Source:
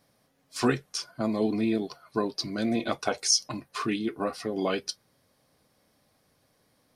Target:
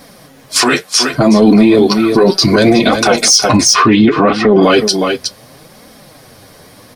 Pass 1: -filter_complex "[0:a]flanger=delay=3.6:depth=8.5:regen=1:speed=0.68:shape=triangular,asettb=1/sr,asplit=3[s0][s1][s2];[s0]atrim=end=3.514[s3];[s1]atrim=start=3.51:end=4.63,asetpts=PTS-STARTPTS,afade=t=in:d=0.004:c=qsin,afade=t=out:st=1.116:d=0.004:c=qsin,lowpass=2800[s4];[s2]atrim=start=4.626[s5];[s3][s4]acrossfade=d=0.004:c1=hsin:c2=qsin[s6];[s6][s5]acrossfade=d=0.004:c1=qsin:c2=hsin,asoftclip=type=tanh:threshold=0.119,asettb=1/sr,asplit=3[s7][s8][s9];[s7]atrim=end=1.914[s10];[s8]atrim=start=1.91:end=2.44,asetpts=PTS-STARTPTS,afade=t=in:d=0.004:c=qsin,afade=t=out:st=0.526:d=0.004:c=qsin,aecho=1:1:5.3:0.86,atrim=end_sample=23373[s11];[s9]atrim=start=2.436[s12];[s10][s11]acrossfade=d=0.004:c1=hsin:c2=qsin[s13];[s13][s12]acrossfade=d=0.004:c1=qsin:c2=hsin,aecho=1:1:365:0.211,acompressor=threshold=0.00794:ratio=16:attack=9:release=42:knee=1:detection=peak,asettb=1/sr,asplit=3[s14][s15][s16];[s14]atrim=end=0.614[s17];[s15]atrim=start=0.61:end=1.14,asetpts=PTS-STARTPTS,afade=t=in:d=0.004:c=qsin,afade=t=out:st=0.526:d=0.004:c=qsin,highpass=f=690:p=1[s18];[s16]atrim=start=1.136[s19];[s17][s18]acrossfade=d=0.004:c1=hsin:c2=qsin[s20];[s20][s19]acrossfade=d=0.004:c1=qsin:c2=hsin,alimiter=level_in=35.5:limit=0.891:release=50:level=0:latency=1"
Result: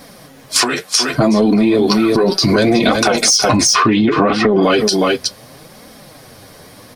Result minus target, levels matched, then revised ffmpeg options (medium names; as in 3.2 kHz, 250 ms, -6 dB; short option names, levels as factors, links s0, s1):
compression: peak gain reduction +10.5 dB
-filter_complex "[0:a]flanger=delay=3.6:depth=8.5:regen=1:speed=0.68:shape=triangular,asettb=1/sr,asplit=3[s0][s1][s2];[s0]atrim=end=3.514[s3];[s1]atrim=start=3.51:end=4.63,asetpts=PTS-STARTPTS,afade=t=in:d=0.004:c=qsin,afade=t=out:st=1.116:d=0.004:c=qsin,lowpass=2800[s4];[s2]atrim=start=4.626[s5];[s3][s4]acrossfade=d=0.004:c1=hsin:c2=qsin[s6];[s6][s5]acrossfade=d=0.004:c1=qsin:c2=hsin,asoftclip=type=tanh:threshold=0.119,asettb=1/sr,asplit=3[s7][s8][s9];[s7]atrim=end=1.914[s10];[s8]atrim=start=1.91:end=2.44,asetpts=PTS-STARTPTS,afade=t=in:d=0.004:c=qsin,afade=t=out:st=0.526:d=0.004:c=qsin,aecho=1:1:5.3:0.86,atrim=end_sample=23373[s11];[s9]atrim=start=2.436[s12];[s10][s11]acrossfade=d=0.004:c1=hsin:c2=qsin[s13];[s13][s12]acrossfade=d=0.004:c1=qsin:c2=hsin,aecho=1:1:365:0.211,acompressor=threshold=0.0282:ratio=16:attack=9:release=42:knee=1:detection=peak,asettb=1/sr,asplit=3[s14][s15][s16];[s14]atrim=end=0.614[s17];[s15]atrim=start=0.61:end=1.14,asetpts=PTS-STARTPTS,afade=t=in:d=0.004:c=qsin,afade=t=out:st=0.526:d=0.004:c=qsin,highpass=f=690:p=1[s18];[s16]atrim=start=1.136[s19];[s17][s18]acrossfade=d=0.004:c1=hsin:c2=qsin[s20];[s20][s19]acrossfade=d=0.004:c1=qsin:c2=hsin,alimiter=level_in=35.5:limit=0.891:release=50:level=0:latency=1"